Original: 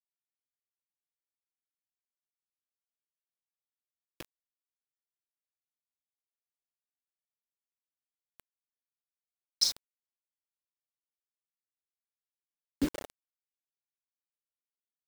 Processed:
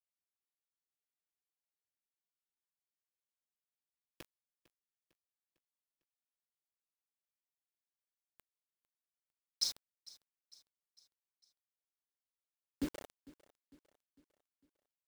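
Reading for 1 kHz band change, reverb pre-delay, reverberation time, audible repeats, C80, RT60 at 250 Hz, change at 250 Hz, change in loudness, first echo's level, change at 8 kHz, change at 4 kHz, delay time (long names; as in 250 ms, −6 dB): −7.5 dB, no reverb audible, no reverb audible, 3, no reverb audible, no reverb audible, −7.5 dB, −8.5 dB, −21.0 dB, −7.5 dB, −7.5 dB, 452 ms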